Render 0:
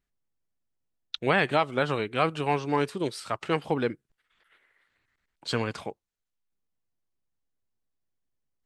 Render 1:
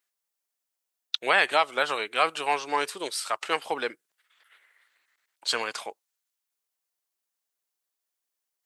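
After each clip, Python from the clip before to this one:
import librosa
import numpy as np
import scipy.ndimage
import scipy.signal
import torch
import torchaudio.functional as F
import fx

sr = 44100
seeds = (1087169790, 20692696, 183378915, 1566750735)

y = scipy.signal.sosfilt(scipy.signal.butter(2, 640.0, 'highpass', fs=sr, output='sos'), x)
y = fx.high_shelf(y, sr, hz=5100.0, db=9.5)
y = F.gain(torch.from_numpy(y), 3.0).numpy()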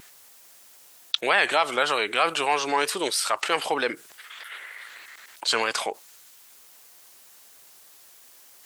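y = fx.vibrato(x, sr, rate_hz=3.2, depth_cents=51.0)
y = fx.env_flatten(y, sr, amount_pct=50)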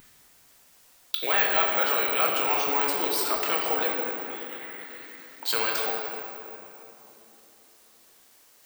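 y = fx.room_shoebox(x, sr, seeds[0], volume_m3=190.0, walls='hard', distance_m=0.54)
y = (np.kron(scipy.signal.resample_poly(y, 1, 2), np.eye(2)[0]) * 2)[:len(y)]
y = F.gain(torch.from_numpy(y), -7.0).numpy()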